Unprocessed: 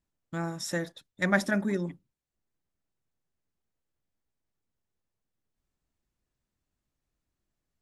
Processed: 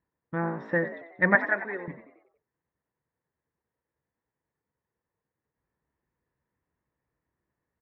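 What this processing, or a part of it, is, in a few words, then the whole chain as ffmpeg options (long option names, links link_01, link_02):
bass cabinet: -filter_complex "[0:a]highpass=65,equalizer=frequency=72:width_type=q:width=4:gain=4,equalizer=frequency=140:width_type=q:width=4:gain=5,equalizer=frequency=320:width_type=q:width=4:gain=3,equalizer=frequency=470:width_type=q:width=4:gain=9,equalizer=frequency=960:width_type=q:width=4:gain=10,equalizer=frequency=1800:width_type=q:width=4:gain=9,lowpass=frequency=2200:width=0.5412,lowpass=frequency=2200:width=1.3066,asettb=1/sr,asplit=3[link_01][link_02][link_03];[link_01]atrim=end=1.354[link_04];[link_02]atrim=start=1.35:end=1.88,asetpts=PTS-STARTPTS,afade=type=in:duration=0.004:curve=qsin,afade=type=out:start_time=0.526:duration=0.004:curve=qsin,highpass=610[link_05];[link_03]atrim=start=1.876[link_06];[link_04][link_05]acrossfade=duration=0.004:curve1=hsin:curve2=qsin[link_07];[link_07][link_06]acrossfade=duration=0.004:curve1=qsin:curve2=hsin,asplit=6[link_08][link_09][link_10][link_11][link_12][link_13];[link_09]adelay=92,afreqshift=55,volume=-13dB[link_14];[link_10]adelay=184,afreqshift=110,volume=-18.8dB[link_15];[link_11]adelay=276,afreqshift=165,volume=-24.7dB[link_16];[link_12]adelay=368,afreqshift=220,volume=-30.5dB[link_17];[link_13]adelay=460,afreqshift=275,volume=-36.4dB[link_18];[link_08][link_14][link_15][link_16][link_17][link_18]amix=inputs=6:normalize=0"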